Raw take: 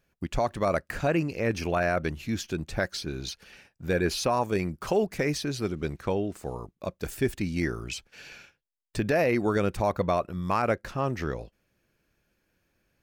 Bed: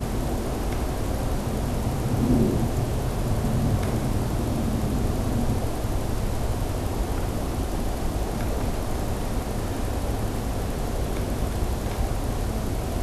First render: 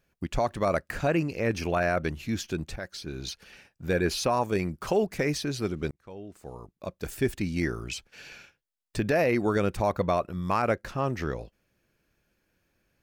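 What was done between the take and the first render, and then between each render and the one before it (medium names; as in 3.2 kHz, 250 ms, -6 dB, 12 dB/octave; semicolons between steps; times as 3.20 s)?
2.76–3.31 s: fade in, from -12 dB; 5.91–7.24 s: fade in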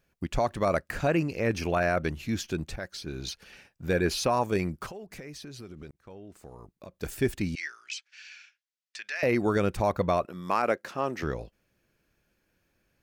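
4.86–6.95 s: compression 5:1, threshold -41 dBFS; 7.55–9.23 s: Chebyshev band-pass 1.8–6.2 kHz; 10.25–11.23 s: high-pass 250 Hz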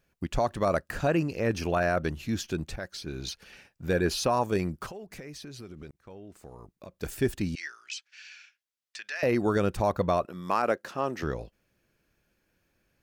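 dynamic bell 2.2 kHz, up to -6 dB, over -51 dBFS, Q 5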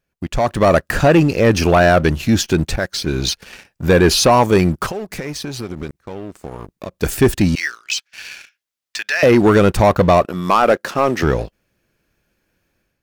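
waveshaping leveller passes 2; level rider gain up to 9.5 dB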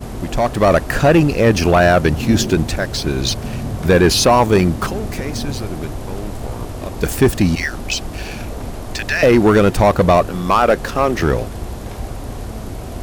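add bed -1 dB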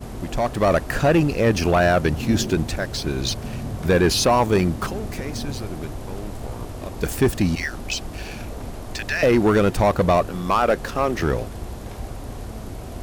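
trim -5.5 dB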